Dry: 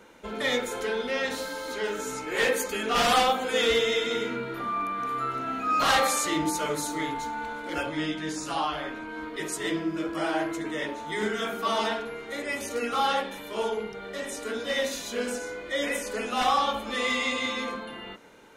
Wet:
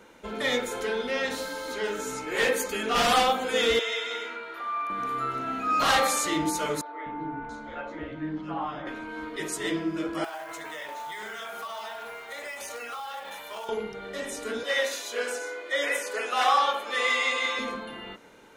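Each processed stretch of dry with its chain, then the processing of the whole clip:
3.79–4.90 s: high-pass 720 Hz + treble shelf 6.1 kHz -8.5 dB
6.81–8.87 s: tape spacing loss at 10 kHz 34 dB + three bands offset in time mids, lows, highs 250/680 ms, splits 440/3000 Hz
10.24–13.69 s: resonant low shelf 480 Hz -12.5 dB, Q 1.5 + short-mantissa float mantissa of 2-bit + compression 12:1, threshold -33 dBFS
14.63–17.59 s: high-pass 360 Hz 24 dB/octave + dynamic bell 1.6 kHz, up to +5 dB, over -41 dBFS, Q 1.3
whole clip: none

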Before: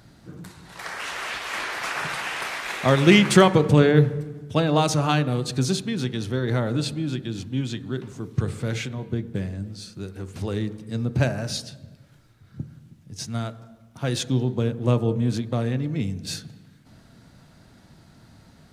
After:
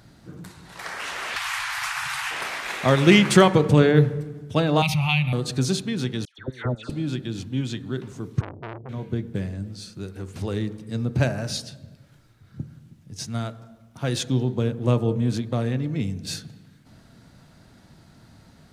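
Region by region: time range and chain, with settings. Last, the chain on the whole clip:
1.36–2.31 s: inverse Chebyshev band-stop 220–480 Hz, stop band 50 dB + treble shelf 6.4 kHz +6 dB + three bands compressed up and down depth 100%
4.82–5.33 s: FFT filter 190 Hz 0 dB, 290 Hz -23 dB, 460 Hz -29 dB, 840 Hz -2 dB, 1.6 kHz -19 dB, 2.3 kHz +12 dB, 3.6 kHz -1 dB, 7.5 kHz -17 dB, 12 kHz +1 dB + level flattener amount 50%
6.25–6.90 s: low-pass 7.9 kHz + level held to a coarse grid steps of 23 dB + phase dispersion lows, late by 137 ms, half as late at 1.5 kHz
8.41–8.89 s: Gaussian low-pass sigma 18 samples + transformer saturation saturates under 1.4 kHz
whole clip: none

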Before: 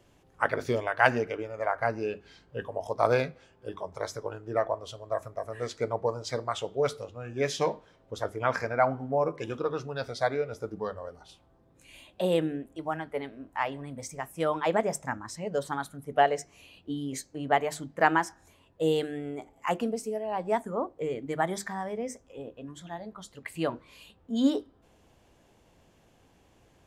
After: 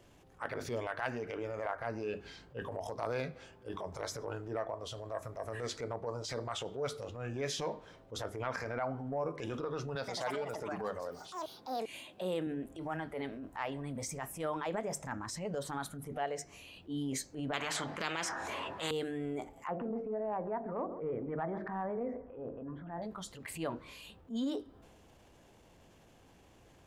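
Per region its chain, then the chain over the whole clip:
9.95–12.47 s: high-pass 150 Hz + ever faster or slower copies 124 ms, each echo +6 st, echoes 2, each echo -6 dB
17.53–18.91 s: band-pass filter 1.1 kHz, Q 0.83 + spectrum-flattening compressor 4:1
19.67–23.02 s: low-pass 1.6 kHz 24 dB/octave + de-hum 45.31 Hz, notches 16 + feedback delay 139 ms, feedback 33%, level -20 dB
whole clip: compression 5:1, threshold -33 dBFS; transient shaper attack -9 dB, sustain +4 dB; trim +1 dB

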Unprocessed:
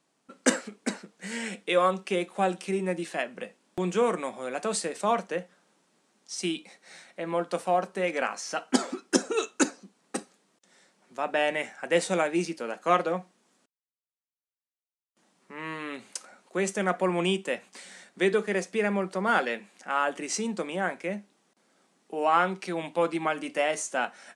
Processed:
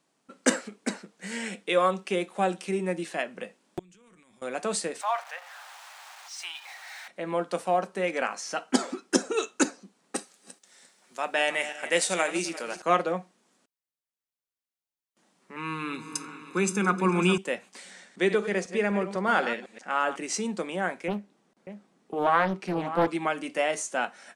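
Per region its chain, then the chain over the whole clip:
3.79–4.42 s: transient shaper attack -6 dB, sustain +7 dB + amplifier tone stack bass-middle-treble 6-0-2 + compression 4:1, threshold -55 dBFS
5.01–7.08 s: jump at every zero crossing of -36 dBFS + elliptic high-pass 740 Hz, stop band 80 dB + treble shelf 4.9 kHz -11 dB
10.16–12.82 s: backward echo that repeats 174 ms, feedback 46%, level -12 dB + tilt EQ +2.5 dB/octave
15.56–17.38 s: comb 0.8 ms, depth 93% + delay with an opening low-pass 138 ms, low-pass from 200 Hz, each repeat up 2 oct, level -6 dB
17.91–20.16 s: chunks repeated in reverse 125 ms, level -11 dB + low-pass 9.1 kHz
21.08–23.08 s: tilt EQ -2 dB/octave + delay 588 ms -12 dB + loudspeaker Doppler distortion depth 0.52 ms
whole clip: none

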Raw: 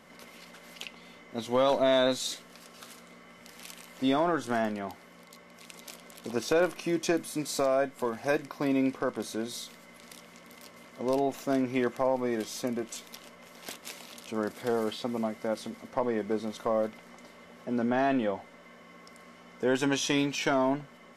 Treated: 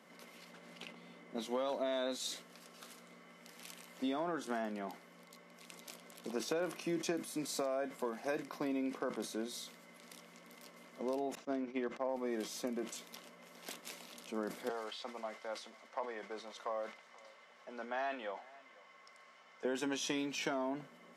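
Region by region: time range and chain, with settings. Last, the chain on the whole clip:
0.53–1.37 s: CVSD coder 64 kbps + low-pass 3.9 kHz 6 dB/octave + bass shelf 380 Hz +5 dB
11.35–12.09 s: distance through air 98 m + upward expansion 2.5:1, over -42 dBFS
14.69–19.65 s: three-band isolator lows -19 dB, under 590 Hz, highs -15 dB, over 7.9 kHz + delay 493 ms -23 dB
whole clip: compression, threshold -27 dBFS; elliptic high-pass 160 Hz; decay stretcher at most 140 dB/s; trim -5.5 dB

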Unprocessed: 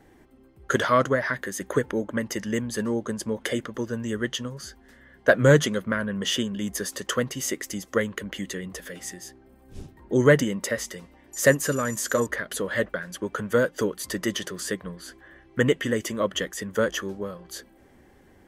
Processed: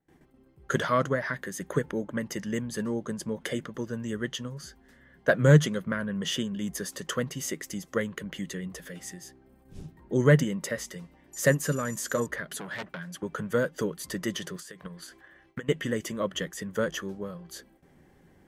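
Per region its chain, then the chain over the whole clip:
12.51–13.23 s: high-pass 98 Hz + peaking EQ 500 Hz -10.5 dB 0.25 oct + transformer saturation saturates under 2.8 kHz
14.56–15.69 s: bass shelf 370 Hz -10 dB + compression 8:1, threshold -38 dBFS + transient shaper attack +11 dB, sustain +5 dB
whole clip: gate with hold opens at -46 dBFS; peaking EQ 160 Hz +13 dB 0.33 oct; trim -5 dB

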